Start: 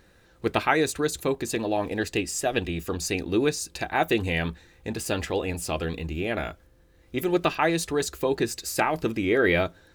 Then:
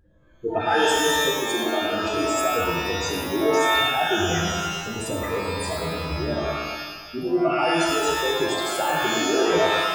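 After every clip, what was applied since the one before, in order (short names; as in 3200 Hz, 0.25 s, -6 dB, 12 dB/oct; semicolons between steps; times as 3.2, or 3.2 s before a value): spectral contrast raised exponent 3.1; tape echo 0.111 s, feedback 58%, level -4 dB, low-pass 1300 Hz; shimmer reverb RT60 1.1 s, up +12 st, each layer -2 dB, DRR 0 dB; gain -2.5 dB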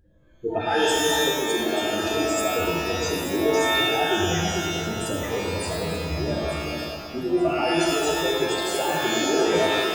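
bell 1200 Hz -6 dB 0.98 oct; echo with dull and thin repeats by turns 0.443 s, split 1600 Hz, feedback 64%, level -7 dB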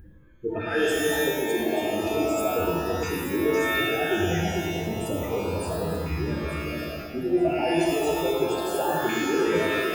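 band shelf 5100 Hz -9 dB; reverse; upward compressor, threshold -27 dBFS; reverse; LFO notch saw up 0.33 Hz 580–2400 Hz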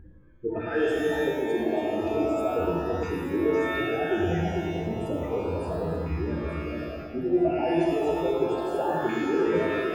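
LPF 1200 Hz 6 dB/oct; notches 50/100/150/200 Hz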